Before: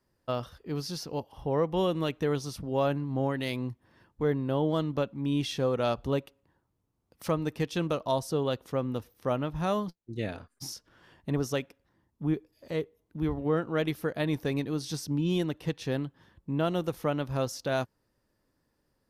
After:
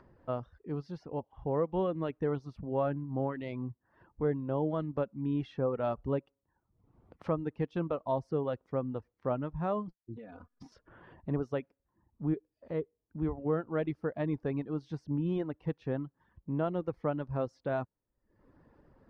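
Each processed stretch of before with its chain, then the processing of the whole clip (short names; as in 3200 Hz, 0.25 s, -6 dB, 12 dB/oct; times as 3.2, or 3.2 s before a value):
10.16–10.72 comb 4.1 ms, depth 82% + compressor 16:1, threshold -38 dBFS
whole clip: LPF 1400 Hz 12 dB/oct; reverb removal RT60 0.61 s; upward compressor, threshold -43 dBFS; gain -2.5 dB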